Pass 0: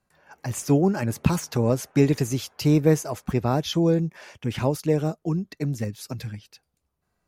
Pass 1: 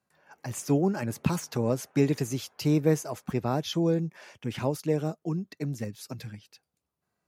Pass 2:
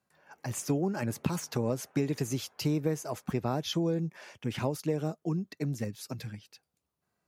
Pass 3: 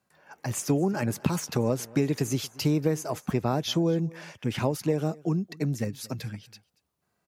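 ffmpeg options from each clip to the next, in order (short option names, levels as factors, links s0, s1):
-af "highpass=110,volume=0.596"
-af "acompressor=threshold=0.0562:ratio=6"
-af "aecho=1:1:232:0.075,volume=1.68"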